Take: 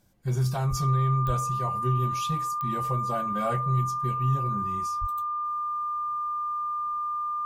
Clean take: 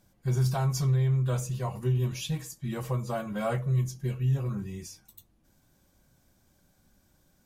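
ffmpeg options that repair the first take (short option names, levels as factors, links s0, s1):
-filter_complex "[0:a]adeclick=t=4,bandreject=f=1200:w=30,asplit=3[s0][s1][s2];[s0]afade=t=out:st=0.69:d=0.02[s3];[s1]highpass=f=140:w=0.5412,highpass=f=140:w=1.3066,afade=t=in:st=0.69:d=0.02,afade=t=out:st=0.81:d=0.02[s4];[s2]afade=t=in:st=0.81:d=0.02[s5];[s3][s4][s5]amix=inputs=3:normalize=0,asplit=3[s6][s7][s8];[s6]afade=t=out:st=1.26:d=0.02[s9];[s7]highpass=f=140:w=0.5412,highpass=f=140:w=1.3066,afade=t=in:st=1.26:d=0.02,afade=t=out:st=1.38:d=0.02[s10];[s8]afade=t=in:st=1.38:d=0.02[s11];[s9][s10][s11]amix=inputs=3:normalize=0,asplit=3[s12][s13][s14];[s12]afade=t=out:st=5:d=0.02[s15];[s13]highpass=f=140:w=0.5412,highpass=f=140:w=1.3066,afade=t=in:st=5:d=0.02,afade=t=out:st=5.12:d=0.02[s16];[s14]afade=t=in:st=5.12:d=0.02[s17];[s15][s16][s17]amix=inputs=3:normalize=0"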